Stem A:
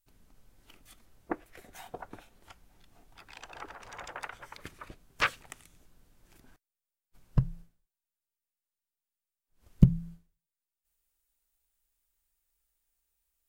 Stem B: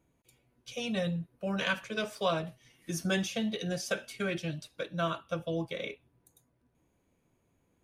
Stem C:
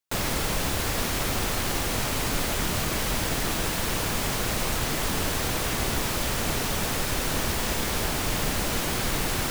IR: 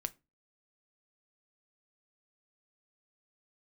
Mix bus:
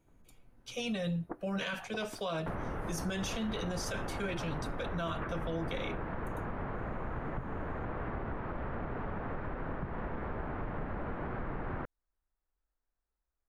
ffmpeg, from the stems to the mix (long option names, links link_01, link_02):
-filter_complex "[0:a]alimiter=limit=-14.5dB:level=0:latency=1:release=418,volume=-1dB[link_01];[1:a]volume=0dB[link_02];[2:a]adelay=2350,volume=-1dB[link_03];[link_01][link_03]amix=inputs=2:normalize=0,lowpass=frequency=1600:width=0.5412,lowpass=frequency=1600:width=1.3066,acompressor=threshold=-34dB:ratio=6,volume=0dB[link_04];[link_02][link_04]amix=inputs=2:normalize=0,alimiter=level_in=3.5dB:limit=-24dB:level=0:latency=1:release=11,volume=-3.5dB"